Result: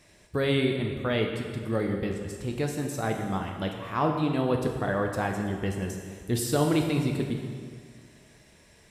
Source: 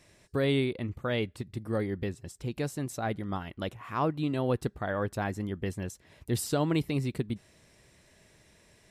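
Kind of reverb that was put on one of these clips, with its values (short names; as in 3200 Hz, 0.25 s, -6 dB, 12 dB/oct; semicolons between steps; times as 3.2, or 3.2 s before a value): plate-style reverb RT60 1.9 s, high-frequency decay 0.85×, DRR 2 dB; gain +2 dB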